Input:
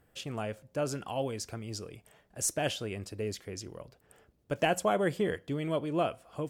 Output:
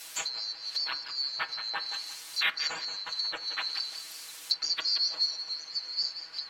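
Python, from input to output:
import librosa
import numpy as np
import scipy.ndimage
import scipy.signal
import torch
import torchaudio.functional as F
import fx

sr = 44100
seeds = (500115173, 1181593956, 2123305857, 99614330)

p1 = fx.band_swap(x, sr, width_hz=4000)
p2 = fx.quant_dither(p1, sr, seeds[0], bits=8, dither='triangular')
p3 = p1 + F.gain(torch.from_numpy(p2), -3.0).numpy()
p4 = fx.tilt_shelf(p3, sr, db=-6.5, hz=690.0)
p5 = p4 + fx.echo_feedback(p4, sr, ms=177, feedback_pct=29, wet_db=-10.5, dry=0)
p6 = fx.env_lowpass_down(p5, sr, base_hz=2000.0, full_db=-23.5)
p7 = fx.low_shelf(p6, sr, hz=180.0, db=-6.0)
p8 = p7 + 0.99 * np.pad(p7, (int(6.2 * sr / 1000.0), 0))[:len(p7)]
p9 = fx.rev_fdn(p8, sr, rt60_s=0.68, lf_ratio=1.0, hf_ratio=0.35, size_ms=20.0, drr_db=13.5)
y = F.gain(torch.from_numpy(p9), -1.0).numpy()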